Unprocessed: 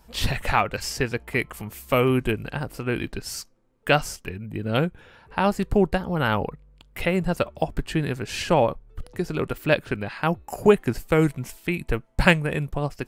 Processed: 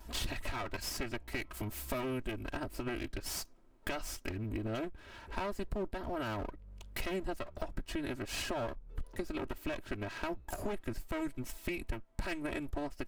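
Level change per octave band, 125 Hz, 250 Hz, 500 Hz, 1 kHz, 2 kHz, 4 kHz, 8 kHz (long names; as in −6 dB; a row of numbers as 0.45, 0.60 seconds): −17.0, −13.5, −16.5, −16.0, −15.0, −11.5, −8.0 decibels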